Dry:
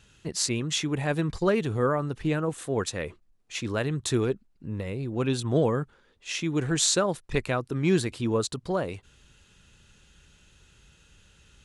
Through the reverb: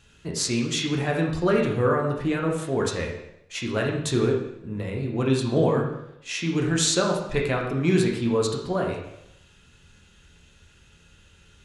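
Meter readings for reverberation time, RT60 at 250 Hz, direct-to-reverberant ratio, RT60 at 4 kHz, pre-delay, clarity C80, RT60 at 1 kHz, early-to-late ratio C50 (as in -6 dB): 0.80 s, 0.80 s, -1.0 dB, 0.75 s, 5 ms, 7.5 dB, 0.80 s, 4.5 dB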